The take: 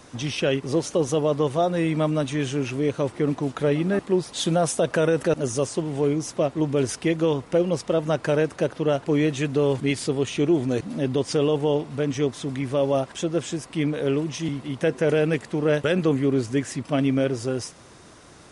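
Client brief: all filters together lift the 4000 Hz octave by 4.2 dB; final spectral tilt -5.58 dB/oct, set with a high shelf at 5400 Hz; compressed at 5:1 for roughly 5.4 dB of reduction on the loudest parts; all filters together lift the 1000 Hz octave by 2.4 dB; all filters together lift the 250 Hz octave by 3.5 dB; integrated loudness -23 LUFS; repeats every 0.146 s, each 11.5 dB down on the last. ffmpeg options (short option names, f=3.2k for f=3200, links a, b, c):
-af "equalizer=f=250:t=o:g=4.5,equalizer=f=1k:t=o:g=3,equalizer=f=4k:t=o:g=6.5,highshelf=f=5.4k:g=-3,acompressor=threshold=-20dB:ratio=5,aecho=1:1:146|292|438:0.266|0.0718|0.0194,volume=2.5dB"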